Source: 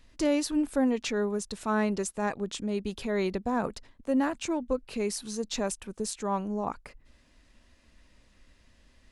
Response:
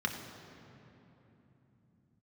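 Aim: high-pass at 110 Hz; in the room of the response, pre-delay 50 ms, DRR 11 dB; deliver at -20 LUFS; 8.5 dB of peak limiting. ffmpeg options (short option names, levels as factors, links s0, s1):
-filter_complex "[0:a]highpass=110,alimiter=limit=0.0668:level=0:latency=1,asplit=2[s0][s1];[1:a]atrim=start_sample=2205,adelay=50[s2];[s1][s2]afir=irnorm=-1:irlink=0,volume=0.141[s3];[s0][s3]amix=inputs=2:normalize=0,volume=4.47"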